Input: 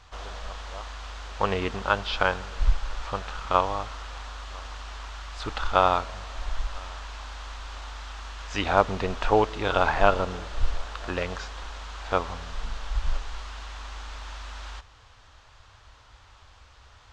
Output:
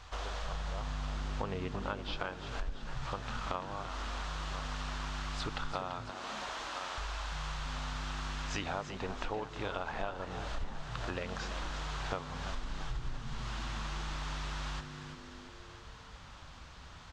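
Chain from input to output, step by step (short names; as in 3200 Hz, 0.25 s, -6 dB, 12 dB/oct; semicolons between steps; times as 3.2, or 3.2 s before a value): 0.52–2.17 low shelf 450 Hz +7.5 dB; 6.1–6.98 HPF 210 Hz 12 dB/oct; compressor 12:1, threshold -35 dBFS, peak gain reduction 22.5 dB; on a send: frequency-shifting echo 0.338 s, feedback 51%, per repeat +100 Hz, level -10 dB; on the sum: gain +1 dB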